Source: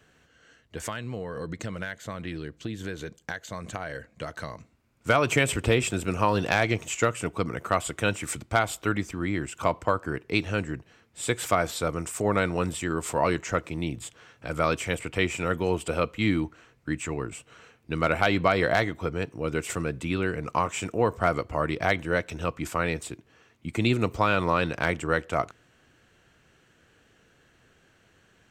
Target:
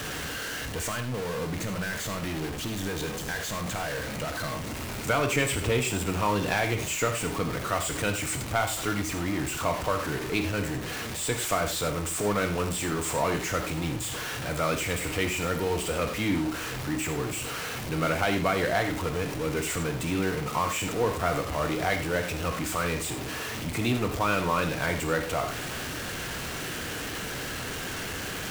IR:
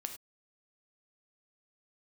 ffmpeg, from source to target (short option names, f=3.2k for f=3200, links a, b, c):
-filter_complex "[0:a]aeval=exprs='val(0)+0.5*0.0668*sgn(val(0))':c=same[a];[1:a]atrim=start_sample=2205[b];[a][b]afir=irnorm=-1:irlink=0,volume=-3.5dB"